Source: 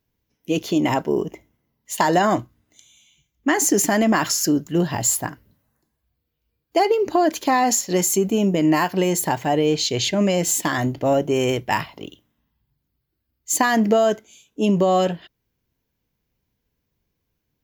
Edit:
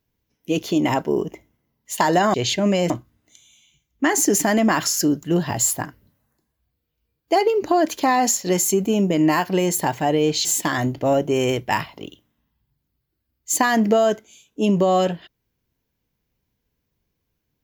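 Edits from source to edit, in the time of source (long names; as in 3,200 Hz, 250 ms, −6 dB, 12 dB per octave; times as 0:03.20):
0:09.89–0:10.45: move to 0:02.34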